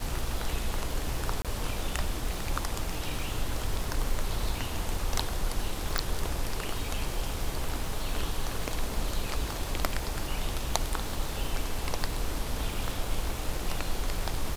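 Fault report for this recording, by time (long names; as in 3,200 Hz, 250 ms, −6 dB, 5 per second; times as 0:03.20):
surface crackle 350 per second −36 dBFS
0:01.42–0:01.45: drop-out 27 ms
0:05.98: click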